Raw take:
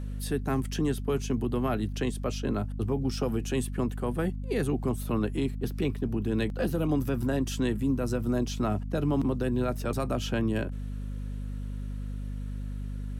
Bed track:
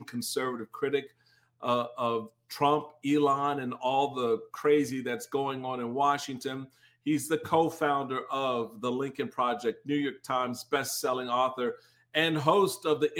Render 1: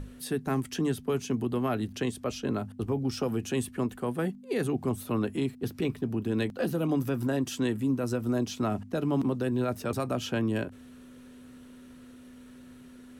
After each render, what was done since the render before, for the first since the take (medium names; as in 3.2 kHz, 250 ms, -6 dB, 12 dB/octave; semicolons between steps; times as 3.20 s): hum notches 50/100/150/200 Hz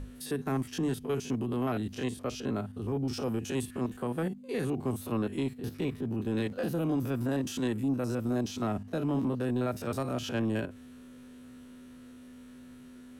spectrogram pixelated in time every 50 ms; saturation -21 dBFS, distortion -21 dB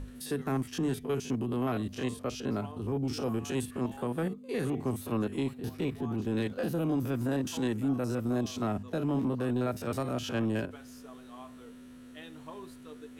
add bed track -22.5 dB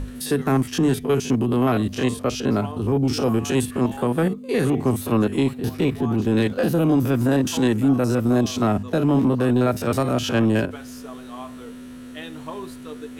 trim +11.5 dB